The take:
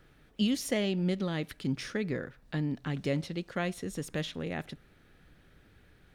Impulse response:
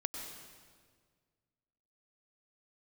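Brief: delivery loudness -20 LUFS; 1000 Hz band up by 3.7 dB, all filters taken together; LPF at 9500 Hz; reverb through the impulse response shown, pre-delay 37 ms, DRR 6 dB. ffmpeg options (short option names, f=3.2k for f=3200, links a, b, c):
-filter_complex "[0:a]lowpass=9.5k,equalizer=f=1k:t=o:g=5.5,asplit=2[a][b];[1:a]atrim=start_sample=2205,adelay=37[c];[b][c]afir=irnorm=-1:irlink=0,volume=-7dB[d];[a][d]amix=inputs=2:normalize=0,volume=12dB"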